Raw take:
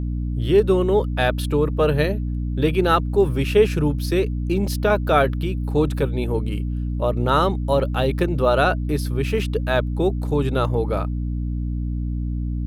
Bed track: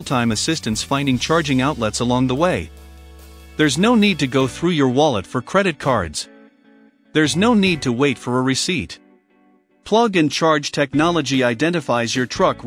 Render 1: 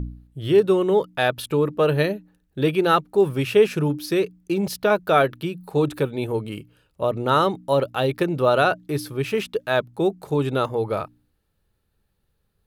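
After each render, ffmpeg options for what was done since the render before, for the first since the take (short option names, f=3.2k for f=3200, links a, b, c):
-af "bandreject=f=60:t=h:w=4,bandreject=f=120:t=h:w=4,bandreject=f=180:t=h:w=4,bandreject=f=240:t=h:w=4,bandreject=f=300:t=h:w=4"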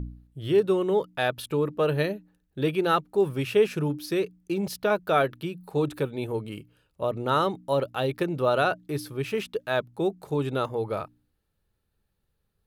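-af "volume=-5dB"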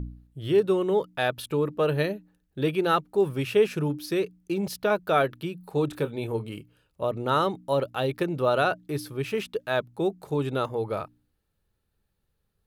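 -filter_complex "[0:a]asettb=1/sr,asplit=3[a][b][c];[a]atrim=end=5.884[d];[b]atrim=start=5.88:end=6.56,asetpts=PTS-STARTPTS,afade=t=in:d=0.004:c=qsin,afade=t=out:st=0.676:d=0.004:c=qsin,asplit=2[e][f];[f]adelay=26,volume=-11.5dB[g];[e][g]amix=inputs=2:normalize=0,atrim=end_sample=29988[h];[c]atrim=start=6.556[i];[d][h]acrossfade=d=0.004:c1=hsin:c2=qsin[j];[j][i]acrossfade=d=0.004:c1=qsin:c2=hsin"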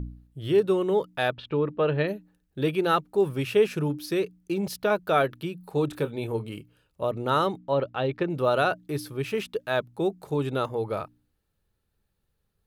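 -filter_complex "[0:a]asplit=3[a][b][c];[a]afade=t=out:st=1.31:d=0.02[d];[b]lowpass=f=3.6k:w=0.5412,lowpass=f=3.6k:w=1.3066,afade=t=in:st=1.31:d=0.02,afade=t=out:st=2.07:d=0.02[e];[c]afade=t=in:st=2.07:d=0.02[f];[d][e][f]amix=inputs=3:normalize=0,asettb=1/sr,asplit=3[g][h][i];[g]atrim=end=7.584[j];[h]atrim=start=7.58:end=8.3,asetpts=PTS-STARTPTS,afade=t=in:d=0.004:c=qsin,afade=t=out:st=0.716:d=0.004:c=qsin,lowpass=3.3k[k];[i]atrim=start=8.296[l];[j][k]acrossfade=d=0.004:c1=hsin:c2=qsin[m];[m][l]acrossfade=d=0.004:c1=qsin:c2=hsin"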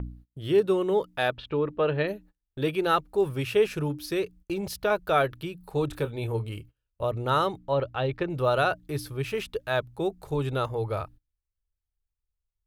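-af "agate=range=-24dB:threshold=-48dB:ratio=16:detection=peak,asubboost=boost=11:cutoff=61"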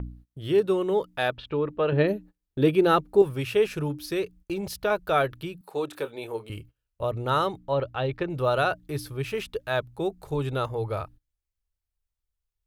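-filter_complex "[0:a]asettb=1/sr,asplit=3[a][b][c];[a]atrim=end=1.924[d];[b]atrim=start=1.92:end=3.22,asetpts=PTS-STARTPTS,afade=t=in:d=0.004:c=qsin,afade=t=out:st=1.296:d=0.004:c=qsin,equalizer=f=250:t=o:w=2.4:g=8.5[e];[c]atrim=start=3.216[f];[d][e]acrossfade=d=0.004:c1=hsin:c2=qsin[g];[g][f]acrossfade=d=0.004:c1=qsin:c2=hsin,asettb=1/sr,asplit=3[h][i][j];[h]atrim=end=5.614[k];[i]atrim=start=5.61:end=6.5,asetpts=PTS-STARTPTS,afade=t=in:d=0.004:c=qsin,afade=t=out:st=0.886:d=0.004:c=qsin,highpass=330[l];[j]atrim=start=6.496[m];[k][l]acrossfade=d=0.004:c1=hsin:c2=qsin[n];[n][m]acrossfade=d=0.004:c1=qsin:c2=hsin"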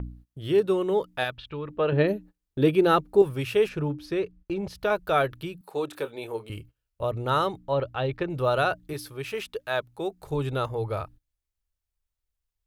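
-filter_complex "[0:a]asplit=3[a][b][c];[a]afade=t=out:st=1.23:d=0.02[d];[b]equalizer=f=450:t=o:w=2.5:g=-9.5,afade=t=in:st=1.23:d=0.02,afade=t=out:st=1.68:d=0.02[e];[c]afade=t=in:st=1.68:d=0.02[f];[d][e][f]amix=inputs=3:normalize=0,asplit=3[g][h][i];[g]afade=t=out:st=3.68:d=0.02[j];[h]aemphasis=mode=reproduction:type=75fm,afade=t=in:st=3.68:d=0.02,afade=t=out:st=4.75:d=0.02[k];[i]afade=t=in:st=4.75:d=0.02[l];[j][k][l]amix=inputs=3:normalize=0,asettb=1/sr,asplit=3[m][n][o];[m]atrim=end=8.934[p];[n]atrim=start=8.93:end=10.22,asetpts=PTS-STARTPTS,afade=t=in:d=0.004:c=qsin,afade=t=out:st=1.286:d=0.004:c=qsin,lowshelf=f=200:g=-11.5[q];[o]atrim=start=10.216[r];[p][q]acrossfade=d=0.004:c1=hsin:c2=qsin[s];[s][r]acrossfade=d=0.004:c1=qsin:c2=hsin"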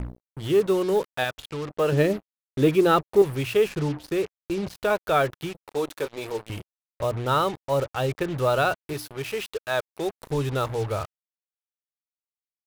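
-filter_complex "[0:a]asplit=2[a][b];[b]asoftclip=type=tanh:threshold=-21.5dB,volume=-9.5dB[c];[a][c]amix=inputs=2:normalize=0,acrusher=bits=5:mix=0:aa=0.5"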